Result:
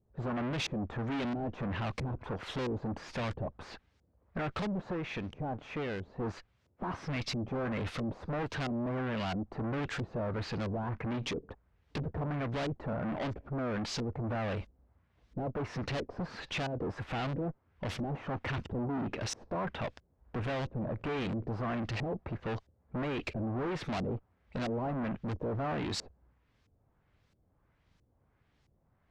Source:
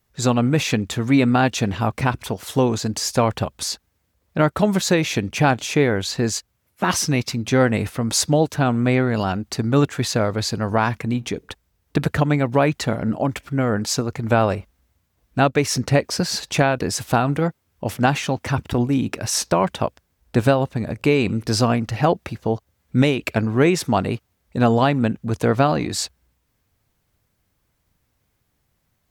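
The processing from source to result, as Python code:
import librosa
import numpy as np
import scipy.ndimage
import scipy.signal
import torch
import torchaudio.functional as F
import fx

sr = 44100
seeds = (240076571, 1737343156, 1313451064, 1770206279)

y = fx.halfwave_gain(x, sr, db=-12.0, at=(4.93, 6.2))
y = fx.tube_stage(y, sr, drive_db=33.0, bias=0.35)
y = fx.filter_lfo_lowpass(y, sr, shape='saw_up', hz=1.5, low_hz=410.0, high_hz=5400.0, q=1.1)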